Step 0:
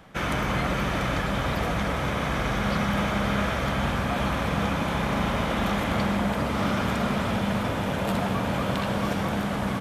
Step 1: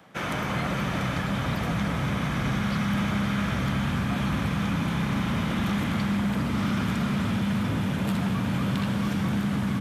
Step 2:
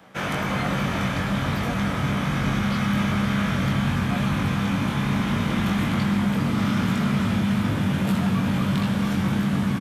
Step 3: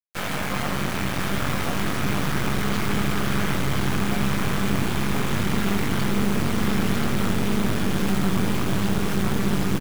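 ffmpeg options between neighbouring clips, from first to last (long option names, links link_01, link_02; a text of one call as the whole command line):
ffmpeg -i in.wav -filter_complex "[0:a]highpass=140,asubboost=boost=8:cutoff=210,acrossover=split=810|3400[link_01][link_02][link_03];[link_01]alimiter=limit=-18.5dB:level=0:latency=1:release=50[link_04];[link_04][link_02][link_03]amix=inputs=3:normalize=0,volume=-2dB" out.wav
ffmpeg -i in.wav -filter_complex "[0:a]asplit=2[link_01][link_02];[link_02]adelay=21,volume=-3.5dB[link_03];[link_01][link_03]amix=inputs=2:normalize=0,volume=1.5dB" out.wav
ffmpeg -i in.wav -af "asoftclip=type=hard:threshold=-16dB,acrusher=bits=3:dc=4:mix=0:aa=0.000001,aecho=1:1:1031:0.531,volume=2.5dB" out.wav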